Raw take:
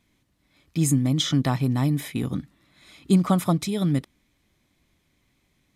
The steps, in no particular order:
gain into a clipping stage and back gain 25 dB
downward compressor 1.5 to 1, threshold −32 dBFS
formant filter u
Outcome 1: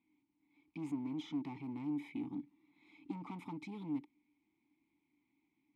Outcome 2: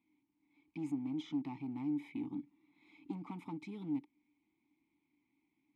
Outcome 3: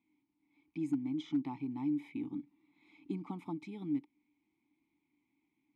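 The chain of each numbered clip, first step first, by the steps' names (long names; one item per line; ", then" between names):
gain into a clipping stage and back, then downward compressor, then formant filter
downward compressor, then gain into a clipping stage and back, then formant filter
downward compressor, then formant filter, then gain into a clipping stage and back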